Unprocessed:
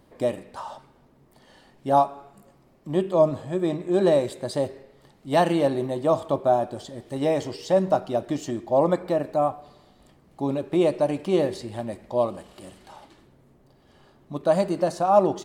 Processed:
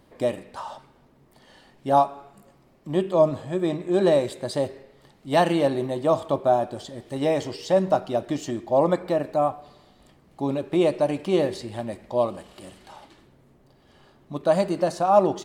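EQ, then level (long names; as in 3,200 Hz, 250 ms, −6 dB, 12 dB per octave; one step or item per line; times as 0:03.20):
parametric band 2,800 Hz +2.5 dB 2.1 octaves
0.0 dB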